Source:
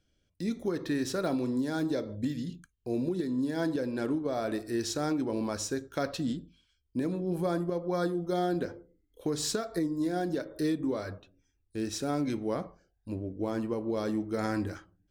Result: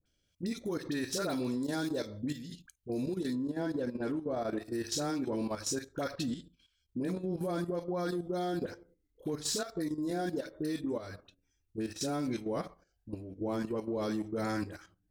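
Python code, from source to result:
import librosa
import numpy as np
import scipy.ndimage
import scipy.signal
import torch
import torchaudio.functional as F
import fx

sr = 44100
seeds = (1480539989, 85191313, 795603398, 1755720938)

y = fx.dispersion(x, sr, late='highs', ms=60.0, hz=1000.0)
y = np.clip(y, -10.0 ** (-21.0 / 20.0), 10.0 ** (-21.0 / 20.0))
y = fx.high_shelf(y, sr, hz=2300.0, db=fx.steps((0.0, 7.5), (3.34, -6.0), (4.64, 3.0)))
y = fx.level_steps(y, sr, step_db=11)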